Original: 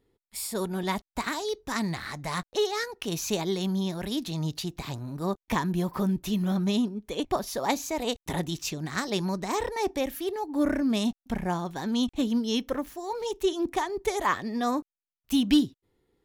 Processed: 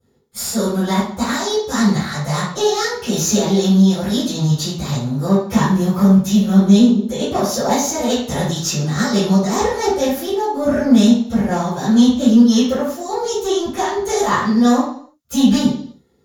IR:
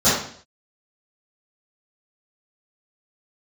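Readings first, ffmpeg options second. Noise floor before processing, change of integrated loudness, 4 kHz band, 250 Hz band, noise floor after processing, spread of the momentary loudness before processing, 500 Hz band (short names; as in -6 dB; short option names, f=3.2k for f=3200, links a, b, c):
under -85 dBFS, +13.0 dB, +10.0 dB, +14.0 dB, -50 dBFS, 7 LU, +11.5 dB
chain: -filter_complex "[0:a]aemphasis=mode=production:type=cd,aeval=exprs='(tanh(11.2*val(0)+0.4)-tanh(0.4))/11.2':c=same[a];[1:a]atrim=start_sample=2205[b];[a][b]afir=irnorm=-1:irlink=0,volume=-10dB"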